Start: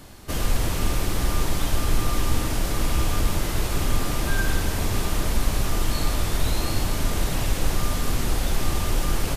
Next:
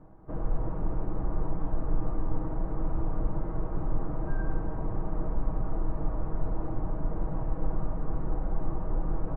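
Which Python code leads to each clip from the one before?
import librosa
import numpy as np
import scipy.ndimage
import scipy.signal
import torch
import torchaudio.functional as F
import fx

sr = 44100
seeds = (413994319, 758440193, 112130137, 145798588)

y = scipy.signal.sosfilt(scipy.signal.butter(4, 1100.0, 'lowpass', fs=sr, output='sos'), x)
y = y + 0.53 * np.pad(y, (int(6.3 * sr / 1000.0), 0))[:len(y)]
y = y * librosa.db_to_amplitude(-7.5)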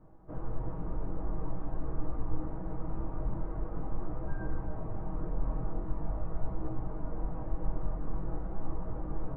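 y = fx.chorus_voices(x, sr, voices=2, hz=0.45, base_ms=20, depth_ms=4.4, mix_pct=45)
y = y * librosa.db_to_amplitude(-1.5)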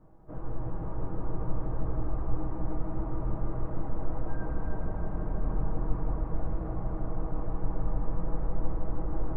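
y = fx.echo_heads(x, sr, ms=158, heads='first and second', feedback_pct=73, wet_db=-6.5)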